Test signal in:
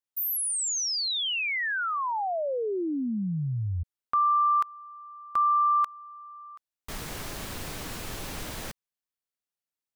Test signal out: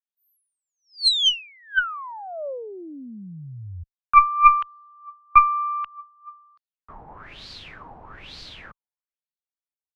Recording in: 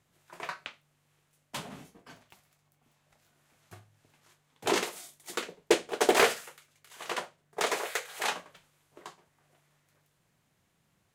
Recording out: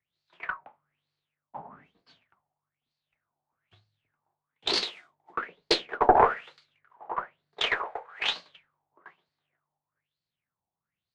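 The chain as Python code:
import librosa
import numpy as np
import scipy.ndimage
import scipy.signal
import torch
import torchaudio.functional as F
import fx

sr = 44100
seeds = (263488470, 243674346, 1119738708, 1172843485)

y = fx.filter_lfo_lowpass(x, sr, shape='sine', hz=1.1, low_hz=800.0, high_hz=4500.0, q=7.9)
y = fx.cheby_harmonics(y, sr, harmonics=(2, 3), levels_db=(-11, -44), full_scale_db=-1.0)
y = fx.band_widen(y, sr, depth_pct=40)
y = y * librosa.db_to_amplitude(-6.0)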